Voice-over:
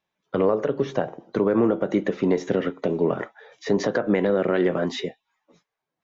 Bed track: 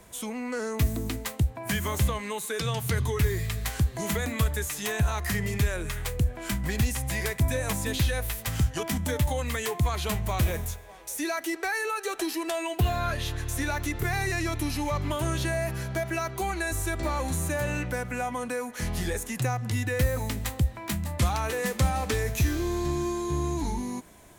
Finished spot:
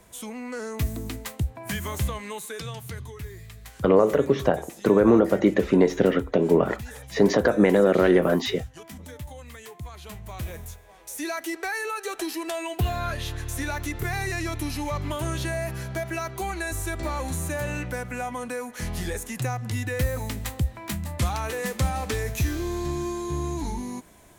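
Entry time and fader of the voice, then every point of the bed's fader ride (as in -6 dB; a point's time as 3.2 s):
3.50 s, +3.0 dB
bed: 2.37 s -2 dB
3.19 s -13 dB
9.97 s -13 dB
11.28 s -0.5 dB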